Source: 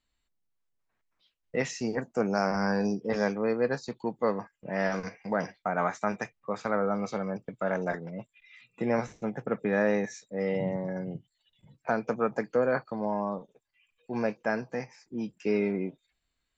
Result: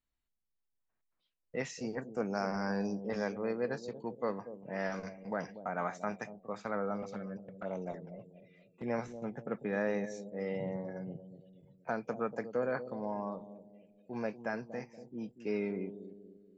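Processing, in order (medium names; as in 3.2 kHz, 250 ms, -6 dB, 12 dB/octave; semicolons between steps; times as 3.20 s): 7.02–8.88 s: touch-sensitive flanger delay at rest 6.2 ms, full sweep at -26 dBFS; bucket-brigade echo 237 ms, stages 1024, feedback 46%, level -11 dB; tape noise reduction on one side only decoder only; trim -7.5 dB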